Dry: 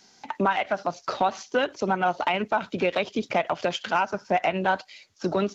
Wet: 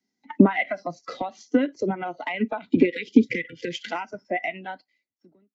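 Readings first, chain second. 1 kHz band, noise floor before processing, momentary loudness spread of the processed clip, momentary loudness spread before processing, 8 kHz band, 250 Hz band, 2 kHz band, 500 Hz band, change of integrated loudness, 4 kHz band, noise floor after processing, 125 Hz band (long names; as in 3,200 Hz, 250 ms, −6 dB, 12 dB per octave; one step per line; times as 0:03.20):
−7.5 dB, −58 dBFS, 15 LU, 4 LU, can't be measured, +9.0 dB, −1.5 dB, −1.5 dB, +1.5 dB, −5.5 dB, −82 dBFS, +3.5 dB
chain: fade-out on the ending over 1.74 s
noise reduction from a noise print of the clip's start 16 dB
low-shelf EQ 350 Hz +5 dB
downward compressor 4 to 1, threshold −26 dBFS, peak gain reduction 8.5 dB
time-frequency box erased 0:02.85–0:03.86, 520–1,400 Hz
speech leveller within 4 dB 2 s
hollow resonant body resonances 260/2,000 Hz, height 17 dB, ringing for 25 ms
multiband upward and downward expander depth 40%
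level −2.5 dB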